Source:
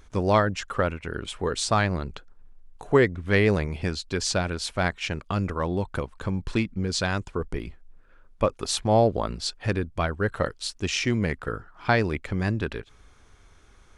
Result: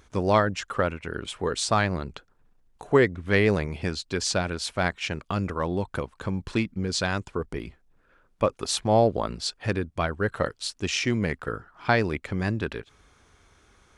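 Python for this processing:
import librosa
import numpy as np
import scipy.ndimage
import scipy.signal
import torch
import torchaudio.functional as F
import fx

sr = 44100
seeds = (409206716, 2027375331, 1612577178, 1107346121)

y = fx.highpass(x, sr, hz=82.0, slope=6)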